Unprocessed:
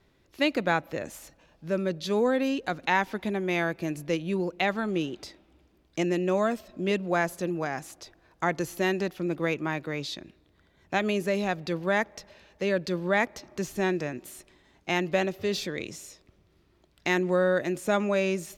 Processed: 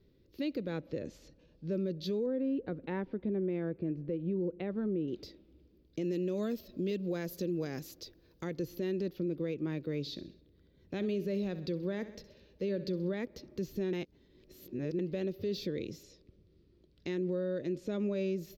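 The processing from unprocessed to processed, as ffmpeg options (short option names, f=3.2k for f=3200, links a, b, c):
-filter_complex "[0:a]asettb=1/sr,asplit=3[a][b][c];[a]atrim=end=0.784[d];[b]atrim=start=0.78:end=1.73,asetpts=PTS-STARTPTS,afade=t=in:d=0.004:c=qsin,afade=t=out:st=0.946:d=0.004:c=qsin,lowpass=f=9.3k:w=0.5412,lowpass=f=9.3k:w=1.3066[e];[c]atrim=start=1.726[f];[d][e]acrossfade=d=0.004:c1=hsin:c2=qsin[g];[g][f]acrossfade=d=0.004:c1=qsin:c2=hsin,asettb=1/sr,asplit=3[h][i][j];[h]atrim=end=2.264[k];[i]atrim=start=2.26:end=5.08,asetpts=PTS-STARTPTS,afade=t=in:d=0.004:c=qsin,afade=t=out:st=2.816:d=0.004:c=qsin,lowpass=1.6k[l];[j]atrim=start=5.076[m];[k][l]acrossfade=d=0.004:c1=hsin:c2=qsin[n];[n][m]acrossfade=d=0.004:c1=qsin:c2=hsin,asettb=1/sr,asplit=3[o][p][q];[o]atrim=end=6.034[r];[p]atrim=start=6.03:end=8.58,asetpts=PTS-STARTPTS,afade=t=in:d=0.004:c=qsin,afade=t=out:st=2.546:d=0.004:c=qsin,highshelf=f=3.5k:g=10.5[s];[q]atrim=start=8.576[t];[r][s]acrossfade=d=0.004:c1=hsin:c2=qsin[u];[u][t]acrossfade=d=0.004:c1=qsin:c2=hsin,asettb=1/sr,asplit=3[v][w][x];[v]atrim=end=10.004[y];[w]atrim=start=10:end=13.14,asetpts=PTS-STARTPTS,afade=t=in:d=0.004:c=qsin,afade=t=out:st=3.136:d=0.004:c=qsin,aecho=1:1:65|130|195|260:0.158|0.0761|0.0365|0.0175,atrim=end_sample=138474[z];[x]atrim=start=13.136[aa];[y][z]acrossfade=d=0.004:c1=hsin:c2=qsin[ab];[ab][aa]acrossfade=d=0.004:c1=qsin:c2=hsin,asettb=1/sr,asplit=3[ac][ad][ae];[ac]atrim=end=16.034[af];[ad]atrim=start=16.03:end=18,asetpts=PTS-STARTPTS,afade=t=in:d=0.004:c=qsin,afade=t=out:st=1.966:d=0.004:c=qsin,lowpass=f=10k:w=0.5412,lowpass=f=10k:w=1.3066[ag];[ae]atrim=start=17.996[ah];[af][ag]acrossfade=d=0.004:c1=hsin:c2=qsin[ai];[ai][ah]acrossfade=d=0.004:c1=qsin:c2=hsin,asplit=3[aj][ak][al];[aj]atrim=end=13.932[am];[ak]atrim=start=13.928:end=14.992,asetpts=PTS-STARTPTS,areverse[an];[al]atrim=start=14.988[ao];[am][an]acrossfade=d=0.004:c1=hsin:c2=hsin[ap];[ap][ao]acrossfade=d=0.004:c1=hsin:c2=hsin,firequalizer=gain_entry='entry(500,0);entry(710,-18);entry(4500,-5);entry(9300,-28);entry(13000,-4)':delay=0.05:min_phase=1,alimiter=level_in=2.5dB:limit=-24dB:level=0:latency=1:release=137,volume=-2.5dB"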